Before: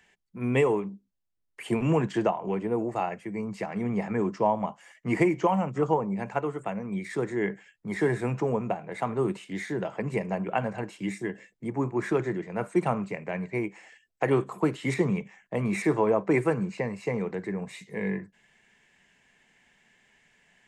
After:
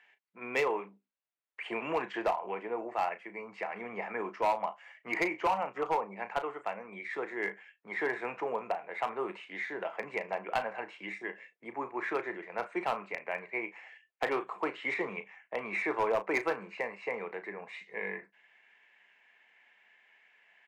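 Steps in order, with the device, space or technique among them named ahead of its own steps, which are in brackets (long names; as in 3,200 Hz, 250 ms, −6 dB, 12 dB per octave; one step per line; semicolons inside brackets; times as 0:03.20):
megaphone (band-pass filter 650–2,600 Hz; parametric band 2,400 Hz +4 dB 0.56 octaves; hard clipping −22.5 dBFS, distortion −15 dB; double-tracking delay 35 ms −11.5 dB)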